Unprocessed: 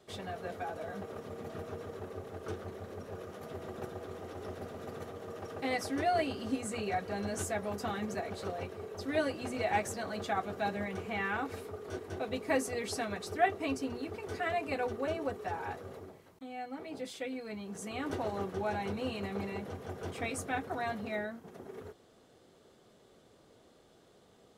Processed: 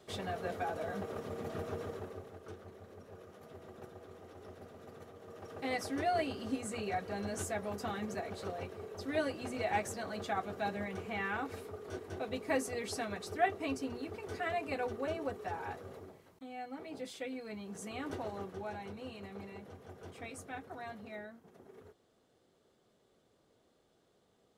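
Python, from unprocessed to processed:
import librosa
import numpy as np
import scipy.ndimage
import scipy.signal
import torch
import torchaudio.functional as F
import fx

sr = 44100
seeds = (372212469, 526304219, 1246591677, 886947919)

y = fx.gain(x, sr, db=fx.line((1.87, 2.0), (2.45, -9.0), (5.17, -9.0), (5.71, -2.5), (17.84, -2.5), (18.93, -9.5)))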